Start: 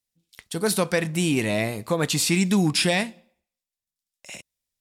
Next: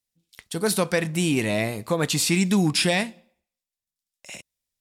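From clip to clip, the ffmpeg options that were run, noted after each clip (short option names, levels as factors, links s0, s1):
-af anull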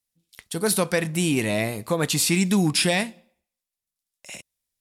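-af "equalizer=f=11000:t=o:w=0.51:g=5"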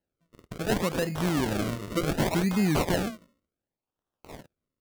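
-filter_complex "[0:a]acrossover=split=840[s0][s1];[s0]adelay=50[s2];[s2][s1]amix=inputs=2:normalize=0,acrusher=samples=37:mix=1:aa=0.000001:lfo=1:lforange=37:lforate=0.68,volume=0.631"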